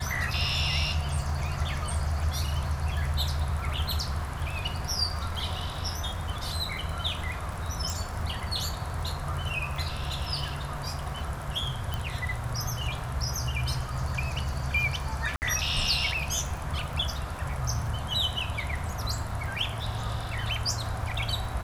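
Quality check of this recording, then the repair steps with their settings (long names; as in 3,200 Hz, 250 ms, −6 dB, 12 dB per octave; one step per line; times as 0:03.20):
surface crackle 47 per second −35 dBFS
0:07.90: click
0:11.94: click
0:15.36–0:15.42: drop-out 59 ms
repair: click removal
repair the gap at 0:15.36, 59 ms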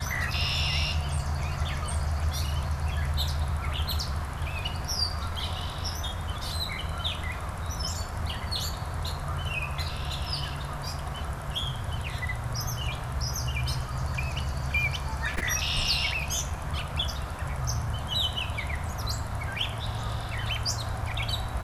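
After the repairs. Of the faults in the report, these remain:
none of them is left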